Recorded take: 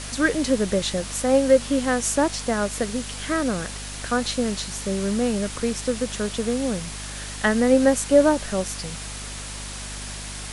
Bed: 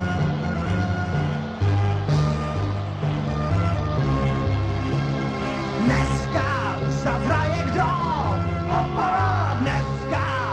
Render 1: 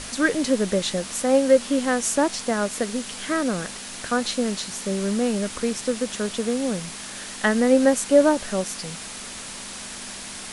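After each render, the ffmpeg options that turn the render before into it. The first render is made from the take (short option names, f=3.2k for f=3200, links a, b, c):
-af "bandreject=f=50:t=h:w=6,bandreject=f=100:t=h:w=6,bandreject=f=150:t=h:w=6"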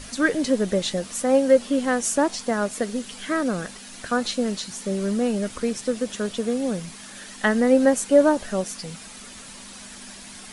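-af "afftdn=nr=8:nf=-36"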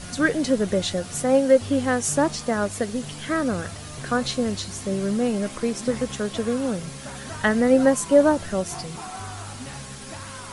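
-filter_complex "[1:a]volume=-15.5dB[a];[0:a][a]amix=inputs=2:normalize=0"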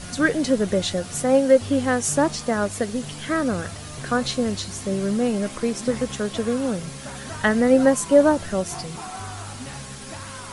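-af "volume=1dB"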